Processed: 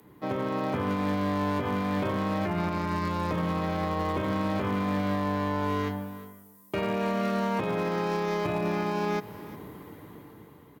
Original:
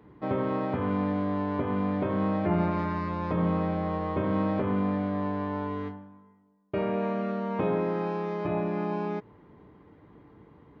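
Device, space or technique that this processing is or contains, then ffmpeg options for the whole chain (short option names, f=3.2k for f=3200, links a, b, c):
FM broadcast chain: -filter_complex "[0:a]highpass=77,dynaudnorm=f=250:g=9:m=12dB,acrossover=split=120|860[a][b][c];[a]acompressor=threshold=-31dB:ratio=4[d];[b]acompressor=threshold=-25dB:ratio=4[e];[c]acompressor=threshold=-30dB:ratio=4[f];[d][e][f]amix=inputs=3:normalize=0,aemphasis=mode=production:type=50fm,alimiter=limit=-19.5dB:level=0:latency=1:release=116,asoftclip=type=hard:threshold=-22dB,lowpass=f=15k:w=0.5412,lowpass=f=15k:w=1.3066,aemphasis=mode=production:type=50fm,aecho=1:1:359:0.133"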